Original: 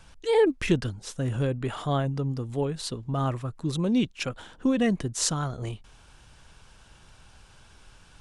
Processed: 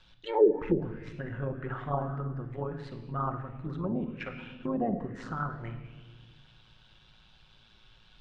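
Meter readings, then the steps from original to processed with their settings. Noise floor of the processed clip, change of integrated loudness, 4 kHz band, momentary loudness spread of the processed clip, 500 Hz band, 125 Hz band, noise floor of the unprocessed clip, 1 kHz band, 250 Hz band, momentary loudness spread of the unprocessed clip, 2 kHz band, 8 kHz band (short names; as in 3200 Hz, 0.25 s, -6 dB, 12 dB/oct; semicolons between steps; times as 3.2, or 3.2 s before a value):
-60 dBFS, -5.0 dB, -16.5 dB, 16 LU, -2.5 dB, -7.0 dB, -55 dBFS, -1.5 dB, -6.5 dB, 11 LU, -7.0 dB, under -30 dB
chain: AM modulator 110 Hz, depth 45%; shoebox room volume 1500 m³, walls mixed, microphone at 1 m; envelope low-pass 230–3900 Hz down, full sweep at -15.5 dBFS; gain -7.5 dB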